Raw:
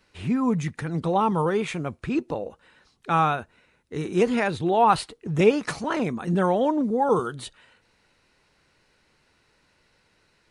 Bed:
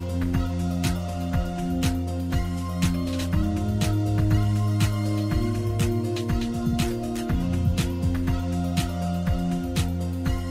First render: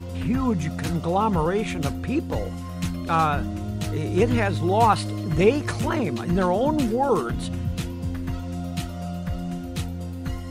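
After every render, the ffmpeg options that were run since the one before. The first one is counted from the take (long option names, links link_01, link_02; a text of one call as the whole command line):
ffmpeg -i in.wav -i bed.wav -filter_complex "[1:a]volume=-4.5dB[link_01];[0:a][link_01]amix=inputs=2:normalize=0" out.wav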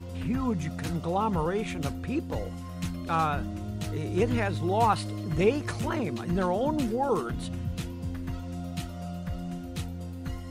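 ffmpeg -i in.wav -af "volume=-5.5dB" out.wav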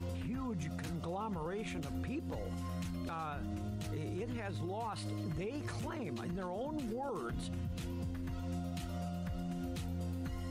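ffmpeg -i in.wav -af "acompressor=threshold=-29dB:ratio=4,alimiter=level_in=8dB:limit=-24dB:level=0:latency=1:release=111,volume=-8dB" out.wav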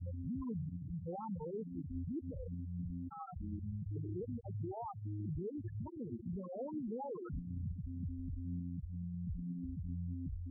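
ffmpeg -i in.wav -af "afftfilt=real='re*gte(hypot(re,im),0.0562)':imag='im*gte(hypot(re,im),0.0562)':win_size=1024:overlap=0.75,highshelf=frequency=2100:gain=-11.5" out.wav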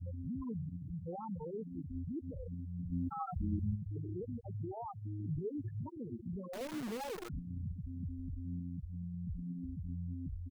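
ffmpeg -i in.wav -filter_complex "[0:a]asplit=3[link_01][link_02][link_03];[link_01]afade=type=out:start_time=2.91:duration=0.02[link_04];[link_02]acontrast=88,afade=type=in:start_time=2.91:duration=0.02,afade=type=out:start_time=3.74:duration=0.02[link_05];[link_03]afade=type=in:start_time=3.74:duration=0.02[link_06];[link_04][link_05][link_06]amix=inputs=3:normalize=0,asplit=3[link_07][link_08][link_09];[link_07]afade=type=out:start_time=5.23:duration=0.02[link_10];[link_08]aecho=1:1:7.3:0.65,afade=type=in:start_time=5.23:duration=0.02,afade=type=out:start_time=5.89:duration=0.02[link_11];[link_09]afade=type=in:start_time=5.89:duration=0.02[link_12];[link_10][link_11][link_12]amix=inputs=3:normalize=0,asettb=1/sr,asplit=3[link_13][link_14][link_15];[link_13]atrim=end=6.534[link_16];[link_14]atrim=start=6.53:end=7.29,asetpts=PTS-STARTPTS,afade=type=in:duration=0.004:curve=qsin,afade=type=out:start_time=0.756:duration=0.004:curve=qsin,acrusher=bits=8:dc=4:mix=0:aa=0.000001[link_17];[link_15]atrim=start=7.286[link_18];[link_16][link_17]acrossfade=duration=0.004:curve1=hsin:curve2=qsin[link_19];[link_19][link_18]acrossfade=duration=0.004:curve1=qsin:curve2=hsin" out.wav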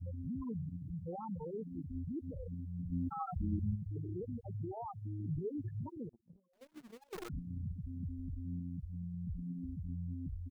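ffmpeg -i in.wav -filter_complex "[0:a]asettb=1/sr,asplit=3[link_01][link_02][link_03];[link_01]atrim=end=6.094[link_04];[link_02]atrim=start=6.09:end=7.13,asetpts=PTS-STARTPTS,afade=type=in:duration=0.004:curve=qsin,afade=type=out:start_time=1.036:duration=0.004:curve=qsin,agate=range=-33dB:threshold=-38dB:ratio=16:release=100:detection=peak[link_05];[link_03]atrim=start=7.126[link_06];[link_04][link_05]acrossfade=duration=0.004:curve1=hsin:curve2=qsin[link_07];[link_07][link_06]acrossfade=duration=0.004:curve1=qsin:curve2=hsin" out.wav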